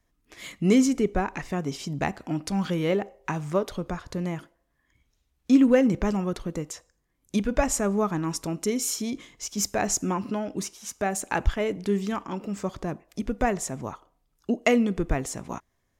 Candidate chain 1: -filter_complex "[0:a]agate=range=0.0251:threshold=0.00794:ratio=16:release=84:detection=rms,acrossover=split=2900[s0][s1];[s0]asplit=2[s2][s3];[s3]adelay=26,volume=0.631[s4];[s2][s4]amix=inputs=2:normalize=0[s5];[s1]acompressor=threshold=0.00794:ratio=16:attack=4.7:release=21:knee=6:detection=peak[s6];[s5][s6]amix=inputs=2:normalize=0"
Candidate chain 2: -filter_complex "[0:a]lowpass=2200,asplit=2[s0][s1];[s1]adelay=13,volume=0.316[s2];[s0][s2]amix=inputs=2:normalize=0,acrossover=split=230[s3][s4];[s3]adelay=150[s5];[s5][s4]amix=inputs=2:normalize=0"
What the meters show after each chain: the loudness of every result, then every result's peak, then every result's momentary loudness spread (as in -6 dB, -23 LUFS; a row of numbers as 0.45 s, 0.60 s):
-25.5 LUFS, -29.0 LUFS; -5.5 dBFS, -7.0 dBFS; 16 LU, 13 LU